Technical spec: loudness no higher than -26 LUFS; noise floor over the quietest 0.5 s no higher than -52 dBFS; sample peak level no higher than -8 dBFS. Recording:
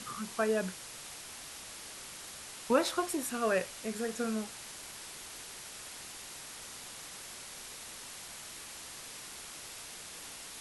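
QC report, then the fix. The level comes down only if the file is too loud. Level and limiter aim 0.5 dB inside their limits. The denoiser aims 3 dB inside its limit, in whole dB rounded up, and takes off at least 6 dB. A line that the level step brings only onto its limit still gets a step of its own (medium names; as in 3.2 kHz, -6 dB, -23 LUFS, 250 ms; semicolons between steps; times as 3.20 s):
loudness -38.0 LUFS: pass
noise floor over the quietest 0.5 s -47 dBFS: fail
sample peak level -15.0 dBFS: pass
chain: noise reduction 8 dB, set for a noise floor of -47 dBFS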